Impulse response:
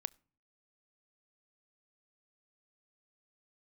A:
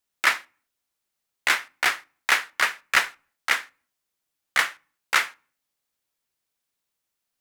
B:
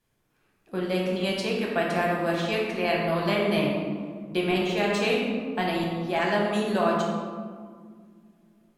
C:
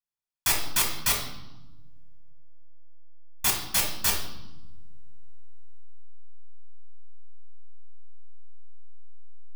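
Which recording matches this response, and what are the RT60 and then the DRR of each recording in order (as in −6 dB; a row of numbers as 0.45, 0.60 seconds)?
A; 0.50, 1.9, 1.1 seconds; 22.5, −3.0, 0.5 decibels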